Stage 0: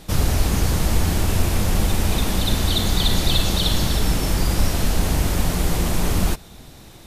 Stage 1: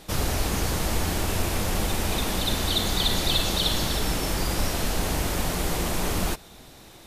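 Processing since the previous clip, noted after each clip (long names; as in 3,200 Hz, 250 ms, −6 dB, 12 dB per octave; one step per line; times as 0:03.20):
bass and treble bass −7 dB, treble −1 dB
level −1.5 dB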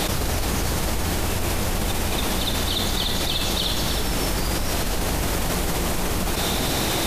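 envelope flattener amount 100%
level −3 dB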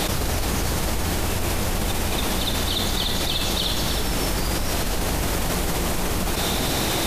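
no processing that can be heard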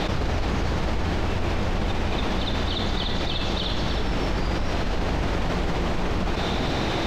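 high-frequency loss of the air 200 metres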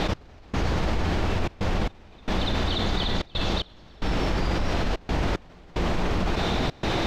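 gate pattern "x...xxxxxxx.x" 112 BPM −24 dB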